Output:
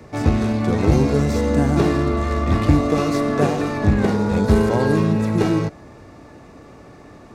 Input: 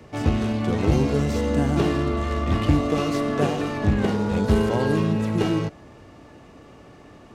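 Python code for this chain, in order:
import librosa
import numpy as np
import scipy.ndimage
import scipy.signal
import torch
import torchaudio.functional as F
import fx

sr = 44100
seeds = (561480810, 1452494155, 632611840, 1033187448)

y = fx.peak_eq(x, sr, hz=3000.0, db=-9.5, octaves=0.26)
y = F.gain(torch.from_numpy(y), 4.0).numpy()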